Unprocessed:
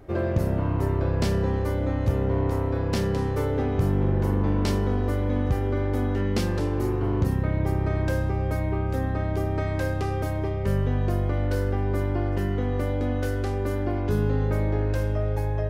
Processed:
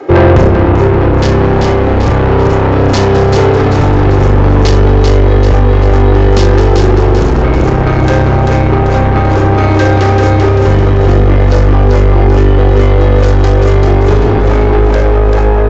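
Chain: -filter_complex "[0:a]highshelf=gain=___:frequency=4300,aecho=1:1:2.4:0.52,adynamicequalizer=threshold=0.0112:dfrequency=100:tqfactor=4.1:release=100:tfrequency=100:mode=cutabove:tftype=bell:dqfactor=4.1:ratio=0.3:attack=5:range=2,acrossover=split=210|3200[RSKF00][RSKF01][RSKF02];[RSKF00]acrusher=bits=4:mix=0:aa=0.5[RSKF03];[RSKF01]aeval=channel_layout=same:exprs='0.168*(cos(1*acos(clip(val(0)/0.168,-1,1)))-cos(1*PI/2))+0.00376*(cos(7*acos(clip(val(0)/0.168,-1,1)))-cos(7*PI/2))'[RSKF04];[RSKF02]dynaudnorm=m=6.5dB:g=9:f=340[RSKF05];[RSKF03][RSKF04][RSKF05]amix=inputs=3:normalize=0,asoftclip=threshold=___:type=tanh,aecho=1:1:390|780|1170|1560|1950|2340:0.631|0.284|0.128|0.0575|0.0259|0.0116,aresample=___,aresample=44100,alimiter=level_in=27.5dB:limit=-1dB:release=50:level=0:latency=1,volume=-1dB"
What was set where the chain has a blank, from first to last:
-10.5, -28.5dB, 16000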